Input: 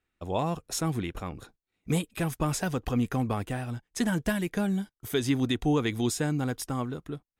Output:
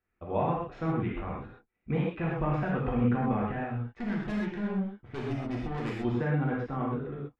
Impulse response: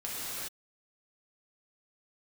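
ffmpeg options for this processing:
-filter_complex "[0:a]lowpass=f=2300:w=0.5412,lowpass=f=2300:w=1.3066,asettb=1/sr,asplit=3[s0][s1][s2];[s0]atrim=end=3.734[s3];[s1]atrim=start=3.73:end=6.05,asetpts=PTS-STARTPTS,afade=t=in:d=0.004:c=qsin,afade=t=out:st=2.316:d=0.004:c=qsin,aeval=exprs='(tanh(31.6*val(0)+0.6)-tanh(0.6))/31.6':c=same[s4];[s2]atrim=start=6.046[s5];[s3][s4]acrossfade=d=0.004:c1=hsin:c2=qsin[s6];[s6][s5]acrossfade=d=0.004:c1=qsin:c2=hsin[s7];[1:a]atrim=start_sample=2205,atrim=end_sample=6174[s8];[s7][s8]afir=irnorm=-1:irlink=0"

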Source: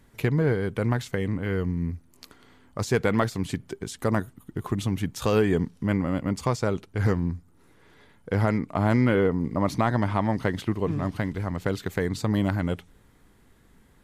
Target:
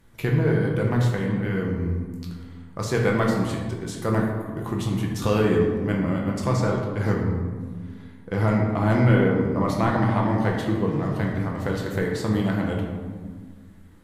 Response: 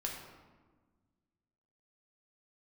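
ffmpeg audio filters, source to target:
-filter_complex "[1:a]atrim=start_sample=2205,asetrate=37485,aresample=44100[s0];[0:a][s0]afir=irnorm=-1:irlink=0"

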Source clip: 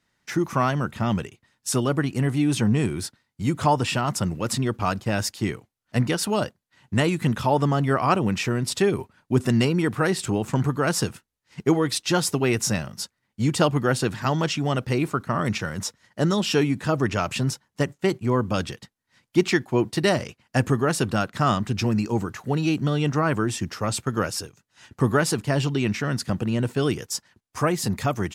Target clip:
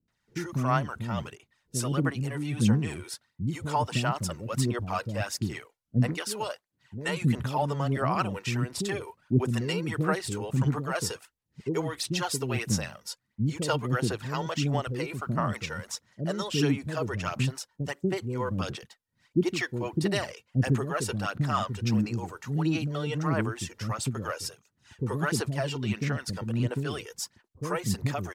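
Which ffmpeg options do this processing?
-filter_complex "[0:a]aphaser=in_gain=1:out_gain=1:delay=2.2:decay=0.5:speed=1.5:type=sinusoidal,asettb=1/sr,asplit=3[s0][s1][s2];[s0]atrim=end=6.144[s3];[s1]atrim=start=6.14:end=7.09,asetpts=PTS-STARTPTS,afade=t=in:d=0.004:c=qsin,afade=t=out:st=0.946:d=0.004:c=qsin,lowshelf=f=340:g=-8[s4];[s2]atrim=start=7.086[s5];[s3][s4]acrossfade=d=0.004:c1=hsin:c2=qsin[s6];[s6][s5]acrossfade=d=0.004:c1=qsin:c2=hsin,acrossover=split=400[s7][s8];[s8]adelay=80[s9];[s7][s9]amix=inputs=2:normalize=0,volume=0.447"

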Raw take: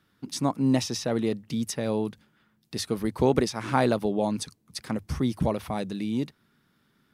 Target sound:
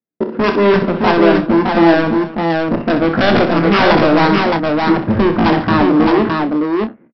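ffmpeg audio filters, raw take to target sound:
-filter_complex "[0:a]highpass=f=76:p=1,agate=range=0.00562:threshold=0.00178:ratio=16:detection=peak,lowpass=f=1000:w=0.5412,lowpass=f=1000:w=1.3066,equalizer=f=150:w=4.5:g=8.5,asplit=2[s0][s1];[s1]aeval=exprs='0.562*sin(PI/2*6.31*val(0)/0.562)':c=same,volume=0.631[s2];[s0][s2]amix=inputs=2:normalize=0,asetrate=66075,aresample=44100,atempo=0.66742,aresample=11025,asoftclip=type=hard:threshold=0.178,aresample=44100,asplit=2[s3][s4];[s4]adelay=30,volume=0.355[s5];[s3][s5]amix=inputs=2:normalize=0,aecho=1:1:63|141|275|615:0.355|0.141|0.15|0.708,volume=1.58"

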